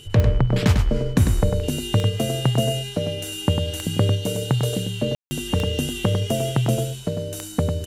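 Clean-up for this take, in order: de-click; notch 3000 Hz, Q 30; room tone fill 5.15–5.31; inverse comb 99 ms -6.5 dB

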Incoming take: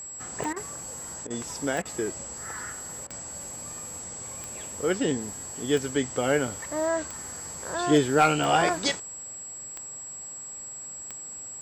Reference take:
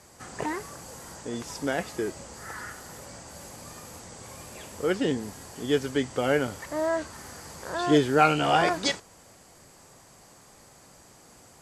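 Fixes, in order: clip repair -11.5 dBFS; de-click; notch 7700 Hz, Q 30; interpolate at 0.53/1.27/1.82/3.07, 32 ms

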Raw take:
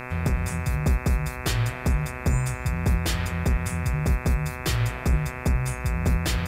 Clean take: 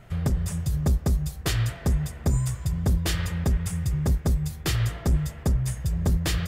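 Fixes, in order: de-hum 125.6 Hz, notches 21; expander -26 dBFS, range -21 dB

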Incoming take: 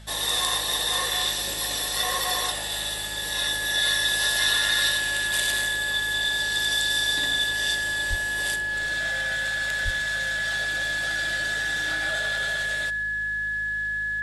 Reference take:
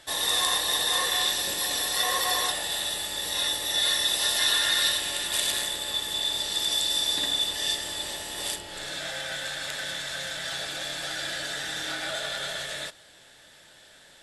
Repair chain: de-hum 52.7 Hz, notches 4; notch 1700 Hz, Q 30; 8.09–8.21 HPF 140 Hz 24 dB/oct; 9.84–9.96 HPF 140 Hz 24 dB/oct; inverse comb 0.119 s -21 dB

